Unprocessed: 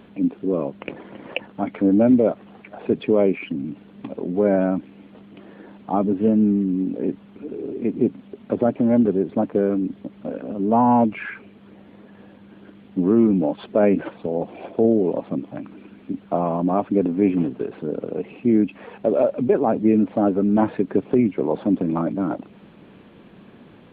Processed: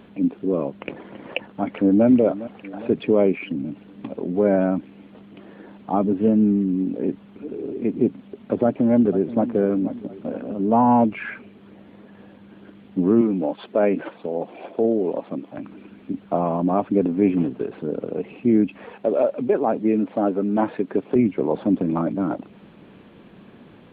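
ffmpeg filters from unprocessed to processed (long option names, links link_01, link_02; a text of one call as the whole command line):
ffmpeg -i in.wav -filter_complex "[0:a]asplit=2[link_01][link_02];[link_02]afade=type=in:start_time=1.27:duration=0.01,afade=type=out:start_time=2.06:duration=0.01,aecho=0:1:410|820|1230|1640|2050|2460:0.16788|0.100728|0.0604369|0.0362622|0.0217573|0.0130544[link_03];[link_01][link_03]amix=inputs=2:normalize=0,asplit=2[link_04][link_05];[link_05]afade=type=in:start_time=8.64:duration=0.01,afade=type=out:start_time=9.53:duration=0.01,aecho=0:1:480|960|1440|1920|2400:0.211349|0.105674|0.0528372|0.0264186|0.0132093[link_06];[link_04][link_06]amix=inputs=2:normalize=0,asettb=1/sr,asplit=3[link_07][link_08][link_09];[link_07]atrim=end=13.214[link_10];[link_08]atrim=start=13.21:end=15.58,asetpts=PTS-STARTPTS,afade=type=in:duration=0.004:curve=qsin,afade=type=out:start_time=2.366:duration=0.004:curve=qsin,highpass=frequency=320:poles=1[link_11];[link_09]atrim=start=15.576[link_12];[link_10][link_11]acrossfade=duration=0.004:curve1=hsin:curve2=qsin[link_13];[link_13][link_12]acrossfade=duration=0.004:curve1=qsin:curve2=hsin,asettb=1/sr,asplit=3[link_14][link_15][link_16];[link_14]atrim=end=18.924[link_17];[link_15]atrim=start=18.92:end=21.16,asetpts=PTS-STARTPTS,afade=type=in:duration=0.004:curve=qsin,afade=type=out:start_time=2.236:duration=0.004:curve=qsin,highpass=frequency=280:poles=1[link_18];[link_16]atrim=start=21.156[link_19];[link_17][link_18]acrossfade=duration=0.004:curve1=hsin:curve2=qsin[link_20];[link_20][link_19]acrossfade=duration=0.004:curve1=qsin:curve2=hsin" out.wav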